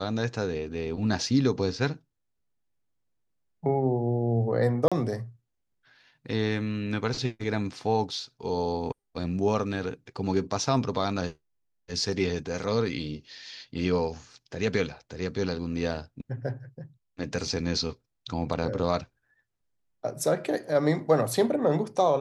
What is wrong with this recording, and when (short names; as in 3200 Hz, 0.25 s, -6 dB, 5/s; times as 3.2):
4.88–4.92 gap 36 ms